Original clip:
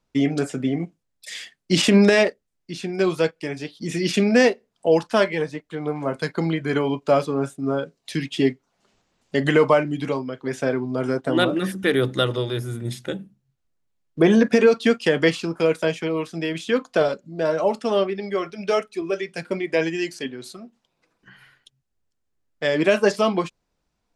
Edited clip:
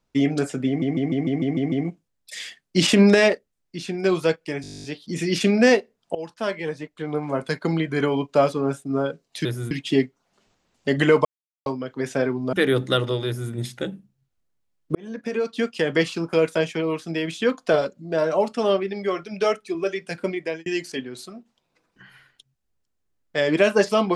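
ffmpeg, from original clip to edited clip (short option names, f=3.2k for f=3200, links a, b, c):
-filter_complex "[0:a]asplit=27[a][b][c][d][e][f][g][h][i][j][k][l][m][n][o][p][q][r][s][t][u][v][w][x][y][z][aa];[a]atrim=end=0.822[ab];[b]atrim=start=0.668:end=0.822[ac];[c]atrim=start=0.668:end=0.822[ad];[d]atrim=start=0.668:end=0.822[ae];[e]atrim=start=0.668:end=0.822[af];[f]atrim=start=0.668:end=0.822[ag];[g]atrim=start=0.668:end=0.822[ah];[h]atrim=start=0.668:end=3.592[ai];[i]atrim=start=3.568:end=3.592[aj];[j]atrim=start=3.568:end=3.592[ak];[k]atrim=start=3.568:end=3.592[al];[l]atrim=start=3.568:end=3.592[am];[m]atrim=start=3.568:end=3.592[an];[n]atrim=start=3.568:end=3.592[ao];[o]atrim=start=3.568:end=3.592[ap];[p]atrim=start=3.568:end=3.592[aq];[q]atrim=start=3.568:end=3.592[ar];[r]atrim=start=3.568:end=3.592[as];[s]atrim=start=3.568:end=4.88,asetpts=PTS-STARTPTS,afade=t=out:st=1.308:d=0.004:c=hsin:silence=0.105925[at];[t]atrim=start=4.88:end=8.182,asetpts=PTS-STARTPTS,afade=t=in:d=0.9:silence=0.105925[au];[u]atrim=start=12.528:end=12.792[av];[v]atrim=start=8.178:end=9.72,asetpts=PTS-STARTPTS,afade=t=out:st=1.538:d=0.004:c=hsin[aw];[w]atrim=start=9.72:end=10.13,asetpts=PTS-STARTPTS,volume=0[ax];[x]atrim=start=10.13:end=11.002,asetpts=PTS-STARTPTS,afade=t=in:d=0.004:c=hsin[ay];[y]atrim=start=11.798:end=14.22,asetpts=PTS-STARTPTS,afade=t=out:st=2.418:d=0.004:c=hsin[az];[z]atrim=start=14.22:end=19.93,asetpts=PTS-STARTPTS,afade=t=in:d=1.32,afade=t=out:st=5.34:d=0.37[ba];[aa]atrim=start=19.93,asetpts=PTS-STARTPTS,afade=t=in:d=0.004:c=hsin[bb];[ab][ac]acrossfade=d=0.004:c1=hsin:c2=hsin[bc];[bc][ad]acrossfade=d=0.004:c1=hsin:c2=hsin[bd];[bd][ae]acrossfade=d=0.004:c1=hsin:c2=hsin[be];[be][af]acrossfade=d=0.004:c1=hsin:c2=hsin[bf];[bf][ag]acrossfade=d=0.004:c1=hsin:c2=hsin[bg];[bg][ah]acrossfade=d=0.004:c1=hsin:c2=hsin[bh];[bh][ai]acrossfade=d=0.004:c1=hsin:c2=hsin[bi];[bi][aj]acrossfade=d=0.004:c1=hsin:c2=hsin[bj];[bj][ak]acrossfade=d=0.004:c1=hsin:c2=hsin[bk];[bk][al]acrossfade=d=0.004:c1=hsin:c2=hsin[bl];[bl][am]acrossfade=d=0.004:c1=hsin:c2=hsin[bm];[bm][an]acrossfade=d=0.004:c1=hsin:c2=hsin[bn];[bn][ao]acrossfade=d=0.004:c1=hsin:c2=hsin[bo];[bo][ap]acrossfade=d=0.004:c1=hsin:c2=hsin[bp];[bp][aq]acrossfade=d=0.004:c1=hsin:c2=hsin[bq];[bq][ar]acrossfade=d=0.004:c1=hsin:c2=hsin[br];[br][as]acrossfade=d=0.004:c1=hsin:c2=hsin[bs];[at][au]concat=n=2:v=0:a=1[bt];[bs][bt]acrossfade=d=0.004:c1=hsin:c2=hsin[bu];[bu][av]acrossfade=d=0.004:c1=hsin:c2=hsin[bv];[aw][ax][ay]concat=n=3:v=0:a=1[bw];[bv][bw]acrossfade=d=0.004:c1=hsin:c2=hsin[bx];[az][ba][bb]concat=n=3:v=0:a=1[by];[bx][by]acrossfade=d=0.004:c1=hsin:c2=hsin"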